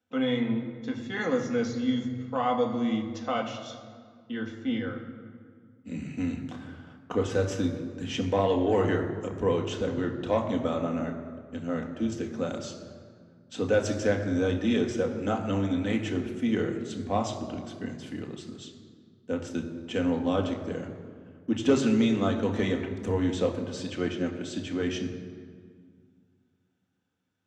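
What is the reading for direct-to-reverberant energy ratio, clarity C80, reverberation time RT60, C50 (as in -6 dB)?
2.0 dB, 9.0 dB, 1.9 s, 8.0 dB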